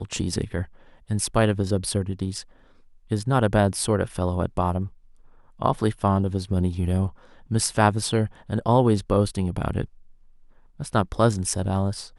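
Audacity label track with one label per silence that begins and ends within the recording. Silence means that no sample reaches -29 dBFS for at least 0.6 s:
2.410000	3.110000	silence
4.870000	5.620000	silence
9.850000	10.800000	silence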